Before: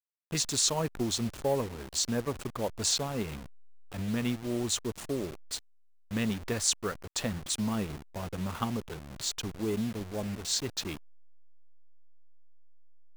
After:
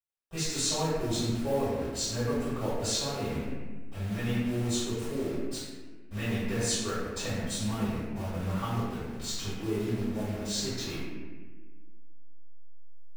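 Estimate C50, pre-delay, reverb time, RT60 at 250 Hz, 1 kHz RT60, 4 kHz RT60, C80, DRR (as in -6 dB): -2.0 dB, 3 ms, 1.4 s, 2.1 s, 1.2 s, 0.95 s, 0.0 dB, -17.5 dB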